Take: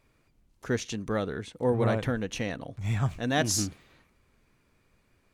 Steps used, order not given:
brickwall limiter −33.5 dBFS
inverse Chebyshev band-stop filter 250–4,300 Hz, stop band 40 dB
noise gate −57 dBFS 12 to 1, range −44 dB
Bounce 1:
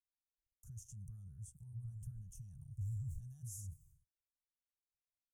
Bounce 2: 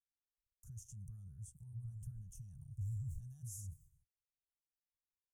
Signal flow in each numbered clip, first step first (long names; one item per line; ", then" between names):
noise gate, then brickwall limiter, then inverse Chebyshev band-stop filter
brickwall limiter, then noise gate, then inverse Chebyshev band-stop filter